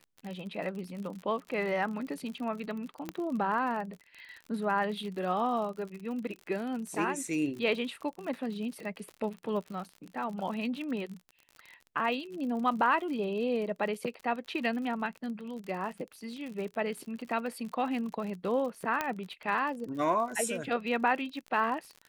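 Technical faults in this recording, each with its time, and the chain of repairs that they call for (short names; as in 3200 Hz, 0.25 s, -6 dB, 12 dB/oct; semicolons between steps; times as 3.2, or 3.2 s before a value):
crackle 53/s -38 dBFS
3.09 pop -21 dBFS
19.01 pop -15 dBFS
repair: de-click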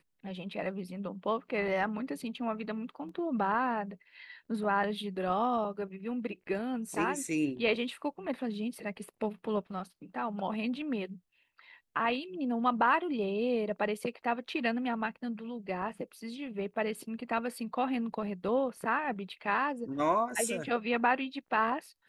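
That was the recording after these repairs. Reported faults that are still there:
3.09 pop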